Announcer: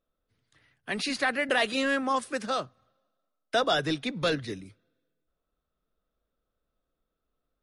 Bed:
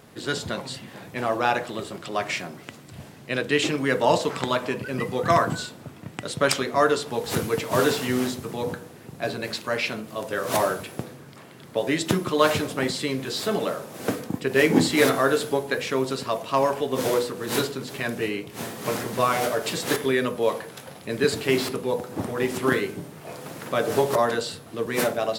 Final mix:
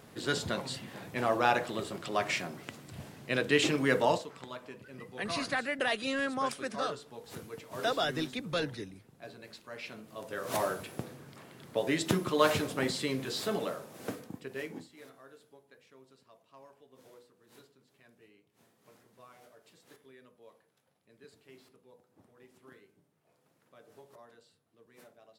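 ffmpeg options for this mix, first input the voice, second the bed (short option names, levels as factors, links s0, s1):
-filter_complex "[0:a]adelay=4300,volume=0.531[s0];[1:a]volume=2.99,afade=t=out:st=3.98:d=0.28:silence=0.16788,afade=t=in:st=9.7:d=1.42:silence=0.211349,afade=t=out:st=13.21:d=1.66:silence=0.0398107[s1];[s0][s1]amix=inputs=2:normalize=0"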